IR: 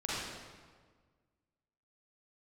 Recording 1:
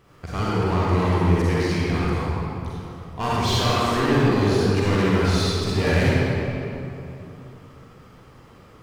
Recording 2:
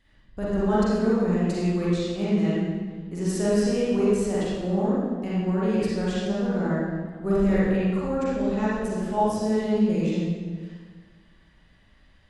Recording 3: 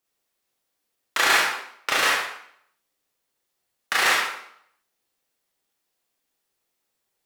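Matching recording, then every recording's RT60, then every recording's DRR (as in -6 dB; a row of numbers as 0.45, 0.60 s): 2; 2.9, 1.6, 0.70 s; -8.5, -8.5, -4.5 dB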